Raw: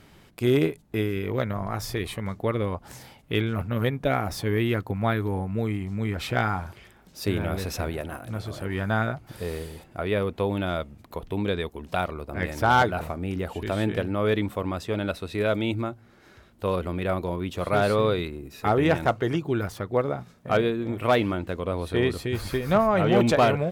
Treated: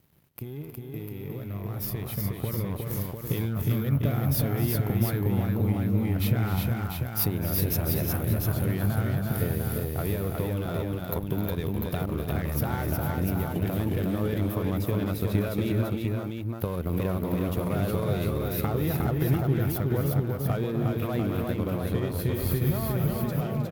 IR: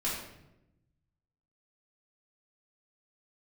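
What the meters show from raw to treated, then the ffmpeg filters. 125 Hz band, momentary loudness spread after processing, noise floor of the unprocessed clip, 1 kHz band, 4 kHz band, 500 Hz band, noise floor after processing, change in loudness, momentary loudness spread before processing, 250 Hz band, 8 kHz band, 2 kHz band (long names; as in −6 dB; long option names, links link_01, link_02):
+3.5 dB, 6 LU, −55 dBFS, −9.5 dB, −6.0 dB, −6.5 dB, −37 dBFS, −1.5 dB, 11 LU, −0.5 dB, +3.5 dB, −9.0 dB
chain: -af "alimiter=limit=-19.5dB:level=0:latency=1,acompressor=threshold=-34dB:ratio=6,aexciter=amount=7:drive=8.3:freq=11000,equalizer=frequency=140:width=4.2:gain=7,aeval=exprs='sgn(val(0))*max(abs(val(0))-0.00398,0)':channel_layout=same,lowshelf=frequency=310:gain=11,aeval=exprs='0.335*(cos(1*acos(clip(val(0)/0.335,-1,1)))-cos(1*PI/2))+0.0299*(cos(4*acos(clip(val(0)/0.335,-1,1)))-cos(4*PI/2))':channel_layout=same,dynaudnorm=framelen=790:gausssize=5:maxgain=11.5dB,highpass=46,aecho=1:1:258|311|361|697:0.237|0.237|0.708|0.562,volume=-8.5dB"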